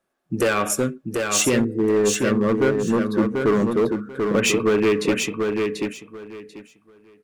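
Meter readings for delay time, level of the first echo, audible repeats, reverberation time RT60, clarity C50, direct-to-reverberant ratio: 739 ms, −4.5 dB, 3, no reverb audible, no reverb audible, no reverb audible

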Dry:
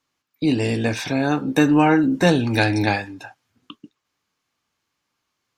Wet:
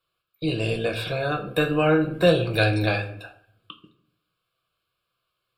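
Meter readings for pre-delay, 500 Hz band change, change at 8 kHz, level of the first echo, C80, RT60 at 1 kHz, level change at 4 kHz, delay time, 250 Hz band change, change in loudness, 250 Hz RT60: 5 ms, +0.5 dB, below −10 dB, no echo audible, 15.0 dB, 0.60 s, −0.5 dB, no echo audible, −8.0 dB, −4.0 dB, 0.85 s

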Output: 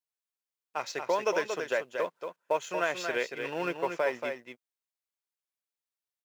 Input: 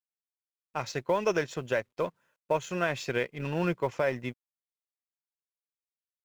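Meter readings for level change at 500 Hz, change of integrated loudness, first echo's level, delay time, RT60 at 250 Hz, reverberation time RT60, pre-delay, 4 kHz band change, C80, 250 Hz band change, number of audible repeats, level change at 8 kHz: −0.5 dB, −0.5 dB, −6.5 dB, 231 ms, no reverb audible, no reverb audible, no reverb audible, +1.0 dB, no reverb audible, −6.0 dB, 1, +1.0 dB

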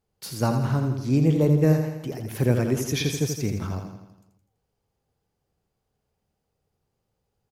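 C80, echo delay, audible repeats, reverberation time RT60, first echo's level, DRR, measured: no reverb audible, 83 ms, 6, no reverb audible, −6.5 dB, no reverb audible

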